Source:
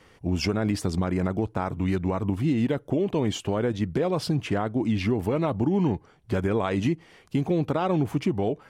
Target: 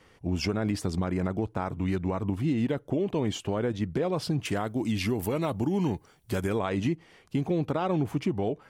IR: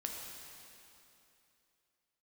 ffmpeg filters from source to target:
-filter_complex "[0:a]asettb=1/sr,asplit=3[link_01][link_02][link_03];[link_01]atrim=end=4.454[link_04];[link_02]atrim=start=4.45:end=6.59,asetpts=PTS-STARTPTS,afade=type=in:duration=0.004:curve=qsin,afade=type=out:start_time=2.136:duration=0.004:curve=qsin,aemphasis=mode=production:type=75fm[link_05];[link_03]atrim=start=6.586[link_06];[link_04][link_05]acrossfade=duration=0.004:curve1=hsin:curve2=qsin[link_07];[link_07][link_06]acrossfade=duration=0.004:curve1=qsin:curve2=hsin,volume=-3dB"

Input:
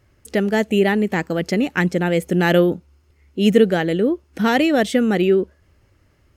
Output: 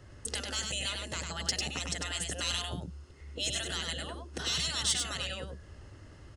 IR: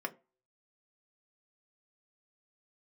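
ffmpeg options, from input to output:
-filter_complex "[0:a]aresample=22050,aresample=44100,afftfilt=real='re*lt(hypot(re,im),0.2)':imag='im*lt(hypot(re,im),0.2)':win_size=1024:overlap=0.75,acrossover=split=190|3700[link_01][link_02][link_03];[link_02]acompressor=threshold=-46dB:ratio=6[link_04];[link_01][link_04][link_03]amix=inputs=3:normalize=0,asoftclip=type=tanh:threshold=-21dB,bandreject=frequency=2300:width=5.9,asplit=2[link_05][link_06];[link_06]aecho=0:1:99:0.596[link_07];[link_05][link_07]amix=inputs=2:normalize=0,volume=5.5dB"

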